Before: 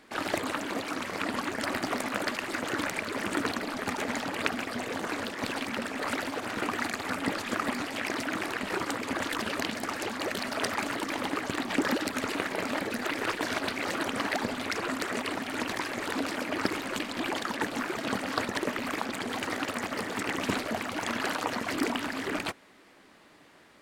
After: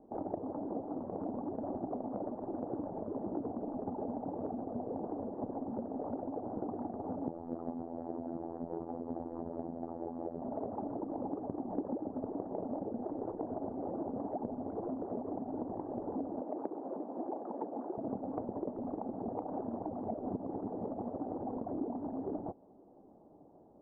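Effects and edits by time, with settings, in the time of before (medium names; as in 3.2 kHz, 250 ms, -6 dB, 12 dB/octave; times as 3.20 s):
7.28–10.42 s: robot voice 83.8 Hz
16.41–17.98 s: high-pass 330 Hz
19.28–21.57 s: reverse
whole clip: elliptic low-pass 800 Hz, stop band 70 dB; compression 3:1, threshold -37 dBFS; trim +1 dB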